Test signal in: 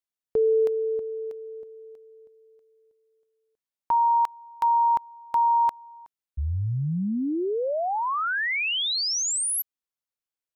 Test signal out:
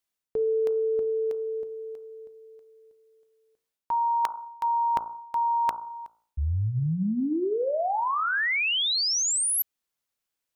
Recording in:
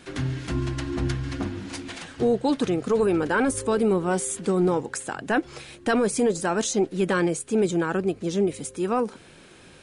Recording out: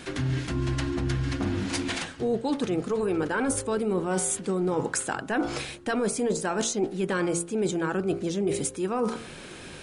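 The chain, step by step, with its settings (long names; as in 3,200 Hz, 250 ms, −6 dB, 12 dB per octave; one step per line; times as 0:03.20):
hum removal 56.97 Hz, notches 26
reversed playback
downward compressor 6 to 1, threshold −32 dBFS
reversed playback
level +7.5 dB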